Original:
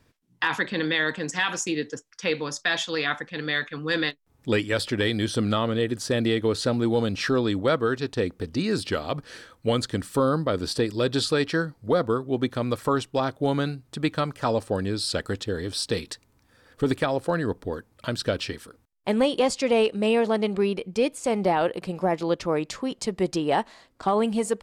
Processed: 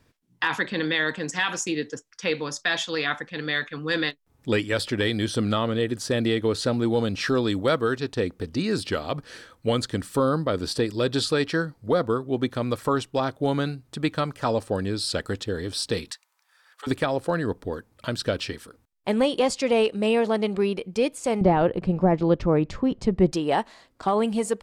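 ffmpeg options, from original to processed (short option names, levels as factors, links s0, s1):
-filter_complex "[0:a]asettb=1/sr,asplit=3[s0][s1][s2];[s0]atrim=end=7.284[s3];[s1]atrim=start=7.28:end=7.96,asetpts=PTS-STARTPTS,afade=t=in:d=0.004:c=qsin,afade=t=out:st=0.676:d=0.004:c=qsin,highshelf=f=5300:g=7[s4];[s2]atrim=start=7.956[s5];[s3][s4]acrossfade=d=0.004:c1=hsin:c2=qsin[s6];[s6][s5]acrossfade=d=0.004:c1=qsin:c2=hsin,asettb=1/sr,asplit=3[s7][s8][s9];[s7]atrim=end=16.114[s10];[s8]atrim=start=16.11:end=16.87,asetpts=PTS-STARTPTS,afade=t=in:d=0.004:c=qsin,afade=t=out:st=0.756:d=0.004:c=qsin,highpass=f=870:w=0.5412,highpass=f=870:w=1.3066[s11];[s9]atrim=start=16.866[s12];[s10][s11]acrossfade=d=0.004:c1=hsin:c2=qsin[s13];[s13][s12]acrossfade=d=0.004:c1=qsin:c2=hsin,asettb=1/sr,asplit=3[s14][s15][s16];[s14]atrim=end=21.414[s17];[s15]atrim=start=21.41:end=23.32,asetpts=PTS-STARTPTS,afade=t=in:d=0.004:c=qsin,afade=t=out:st=1.906:d=0.004:c=qsin,aemphasis=mode=reproduction:type=riaa[s18];[s16]atrim=start=23.316[s19];[s17][s18]acrossfade=d=0.004:c1=hsin:c2=qsin[s20];[s20][s19]acrossfade=d=0.004:c1=qsin:c2=hsin"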